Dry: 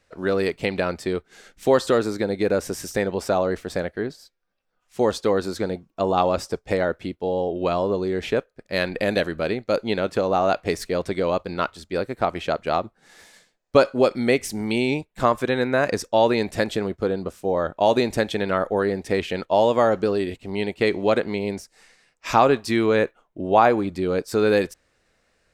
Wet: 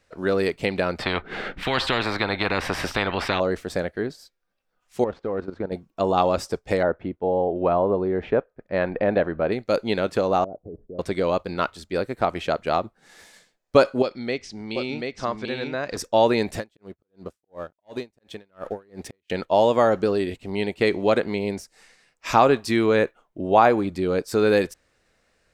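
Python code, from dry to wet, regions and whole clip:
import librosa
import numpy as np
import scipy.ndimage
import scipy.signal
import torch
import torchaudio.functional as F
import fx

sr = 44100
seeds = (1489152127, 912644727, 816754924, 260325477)

y = fx.chain(x, sr, fx.air_absorb(metres=440.0),
    fx.spectral_comp(ratio=4.0), at=(0.99, 3.4))
y = fx.chain(y, sr, fx.cvsd(bps=64000),
    fx.lowpass(hz=1600.0, slope=12),
    fx.level_steps(step_db=13), at=(5.04, 5.72))
y = fx.chain(y, sr, fx.lowpass(hz=1600.0, slope=12),
    fx.dynamic_eq(hz=770.0, q=1.4, threshold_db=-37.0, ratio=4.0, max_db=4), at=(6.83, 9.52))
y = fx.chain(y, sr, fx.cheby2_lowpass(hz=2600.0, order=4, stop_db=70),
    fx.level_steps(step_db=18), at=(10.44, 10.99))
y = fx.chain(y, sr, fx.ladder_lowpass(hz=5800.0, resonance_pct=40),
    fx.echo_single(ms=737, db=-3.5), at=(14.02, 15.97))
y = fx.chain(y, sr, fx.leveller(passes=1),
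    fx.auto_swell(attack_ms=659.0),
    fx.tremolo_db(hz=2.8, depth_db=40), at=(16.54, 19.3))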